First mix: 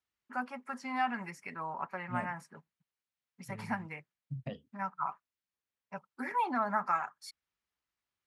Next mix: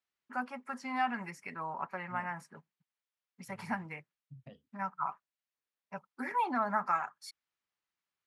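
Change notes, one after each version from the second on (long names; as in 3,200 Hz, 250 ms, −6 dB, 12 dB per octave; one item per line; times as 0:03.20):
second voice −11.5 dB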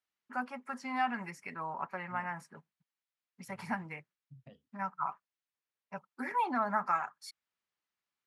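second voice −3.0 dB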